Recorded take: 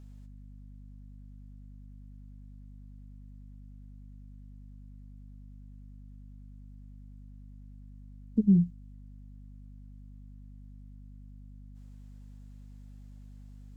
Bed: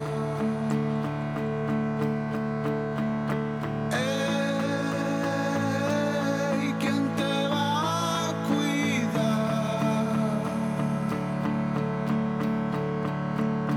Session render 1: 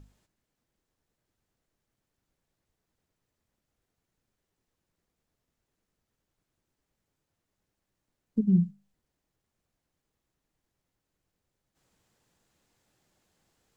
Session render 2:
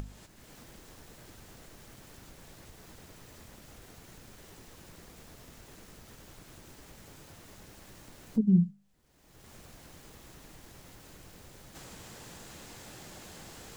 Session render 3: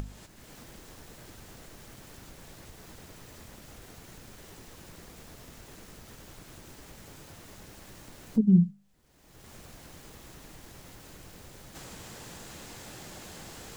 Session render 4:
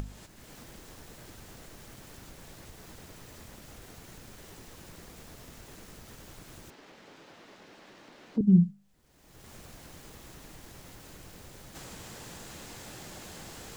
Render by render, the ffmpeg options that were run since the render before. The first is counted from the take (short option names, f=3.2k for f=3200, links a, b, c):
-af "bandreject=f=50:t=h:w=6,bandreject=f=100:t=h:w=6,bandreject=f=150:t=h:w=6,bandreject=f=200:t=h:w=6,bandreject=f=250:t=h:w=6"
-af "acompressor=mode=upward:threshold=-27dB:ratio=2.5"
-af "volume=3dB"
-filter_complex "[0:a]asettb=1/sr,asplit=3[a][b][c];[a]atrim=end=6.704[d];[b]atrim=start=6.7:end=8.41,asetpts=PTS-STARTPTS,afade=t=in:d=0.004:c=qsin,afade=t=out:st=1.706:d=0.004:c=qsin,acrossover=split=200 5000:gain=0.0708 1 0.0891[e][f][g];[e][f][g]amix=inputs=3:normalize=0[h];[c]atrim=start=8.406[i];[d][h]acrossfade=d=0.004:c1=hsin:c2=qsin[j];[j][i]acrossfade=d=0.004:c1=qsin:c2=hsin"